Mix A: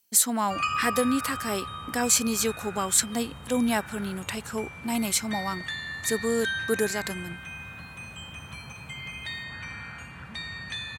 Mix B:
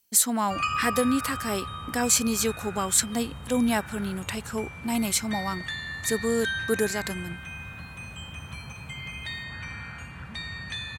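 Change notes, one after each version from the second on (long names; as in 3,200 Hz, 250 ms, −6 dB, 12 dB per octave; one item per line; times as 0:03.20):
master: add low-shelf EQ 100 Hz +8 dB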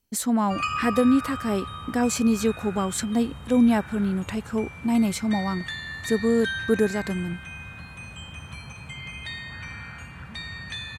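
speech: add spectral tilt −3 dB per octave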